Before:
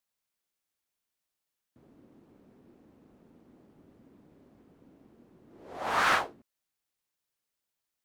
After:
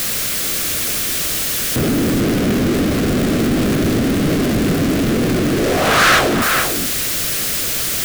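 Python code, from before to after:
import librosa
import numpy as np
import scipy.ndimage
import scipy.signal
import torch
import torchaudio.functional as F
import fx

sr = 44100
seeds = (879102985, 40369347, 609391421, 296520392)

y = x + 0.5 * 10.0 ** (-31.5 / 20.0) * np.sign(x)
y = fx.low_shelf(y, sr, hz=460.0, db=4.5)
y = y + 10.0 ** (-9.5 / 20.0) * np.pad(y, (int(445 * sr / 1000.0), 0))[:len(y)]
y = fx.leveller(y, sr, passes=3)
y = fx.peak_eq(y, sr, hz=900.0, db=-13.0, octaves=0.45)
y = F.gain(torch.from_numpy(y), 7.0).numpy()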